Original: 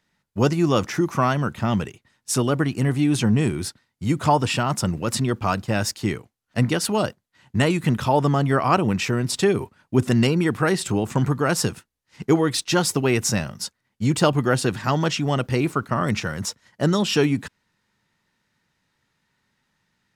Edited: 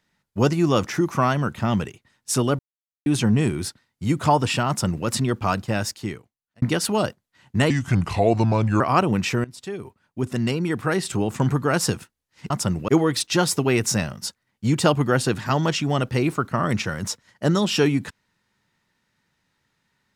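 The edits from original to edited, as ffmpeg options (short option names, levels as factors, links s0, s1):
-filter_complex "[0:a]asplit=9[s0][s1][s2][s3][s4][s5][s6][s7][s8];[s0]atrim=end=2.59,asetpts=PTS-STARTPTS,afade=t=out:st=2.586:d=0.004:c=hsin[s9];[s1]atrim=start=2.59:end=3.06,asetpts=PTS-STARTPTS,volume=0[s10];[s2]atrim=start=3.06:end=6.62,asetpts=PTS-STARTPTS,afade=t=in:d=0.004:c=hsin,afade=t=out:st=2.54:d=1.02[s11];[s3]atrim=start=6.62:end=7.704,asetpts=PTS-STARTPTS,afade=t=in:d=0.004:c=hsin[s12];[s4]atrim=start=7.7:end=8.56,asetpts=PTS-STARTPTS,asetrate=34398,aresample=44100,atrim=end_sample=48623,asetpts=PTS-STARTPTS[s13];[s5]atrim=start=8.556:end=9.2,asetpts=PTS-STARTPTS,afade=t=out:st=0.64:d=0.004:c=hsin:silence=0.105925[s14];[s6]atrim=start=9.2:end=12.262,asetpts=PTS-STARTPTS,afade=t=in:d=1.99:silence=0.105925[s15];[s7]atrim=start=4.678:end=5.062[s16];[s8]atrim=start=12.258[s17];[s9][s10][s11][s12]concat=n=4:v=0:a=1[s18];[s18][s13]acrossfade=d=0.004:c1=hsin:c2=hsin[s19];[s14][s15]concat=n=2:v=0:a=1[s20];[s19][s20]acrossfade=d=0.004:c1=hsin:c2=hsin[s21];[s21][s16]acrossfade=d=0.004:c1=hsin:c2=hsin[s22];[s22][s17]acrossfade=d=0.004:c1=hsin:c2=hsin"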